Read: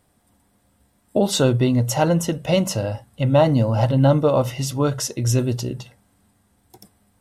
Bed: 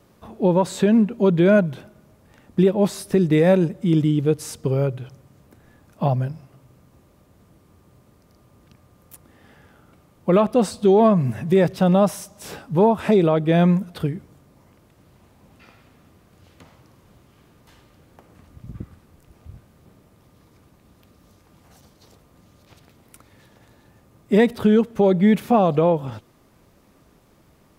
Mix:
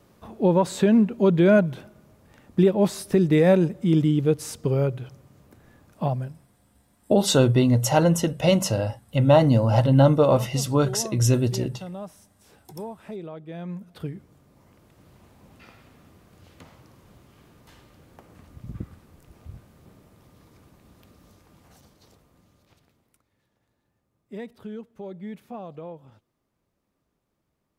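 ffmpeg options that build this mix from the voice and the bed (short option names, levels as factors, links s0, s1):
-filter_complex "[0:a]adelay=5950,volume=0.944[s0];[1:a]volume=8.41,afade=t=out:st=5.82:d=0.74:silence=0.11885,afade=t=in:st=13.64:d=1.44:silence=0.1,afade=t=out:st=21.11:d=2.12:silence=0.0891251[s1];[s0][s1]amix=inputs=2:normalize=0"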